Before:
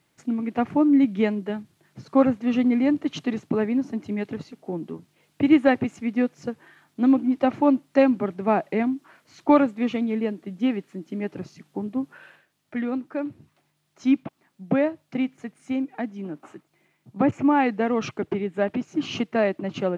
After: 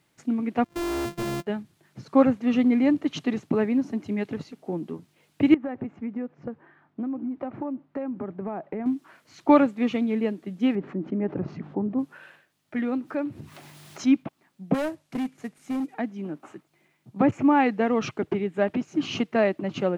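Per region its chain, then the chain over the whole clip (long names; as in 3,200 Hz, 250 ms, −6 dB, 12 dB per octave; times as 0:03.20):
0:00.64–0:01.47: samples sorted by size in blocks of 128 samples + hard clipping −27 dBFS + noise gate −32 dBFS, range −21 dB
0:05.54–0:08.86: low-pass filter 1,400 Hz + downward compressor 10 to 1, threshold −27 dBFS
0:10.75–0:11.99: low-pass filter 1,200 Hz + envelope flattener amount 50%
0:12.79–0:14.22: high-pass filter 49 Hz + upward compression, threshold −27 dBFS
0:14.74–0:15.94: variable-slope delta modulation 64 kbit/s + hard clipping −24.5 dBFS
whole clip: no processing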